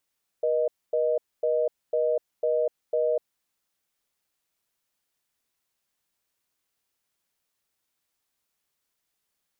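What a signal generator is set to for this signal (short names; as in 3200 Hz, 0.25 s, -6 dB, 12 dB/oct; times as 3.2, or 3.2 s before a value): call progress tone reorder tone, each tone -24 dBFS 2.96 s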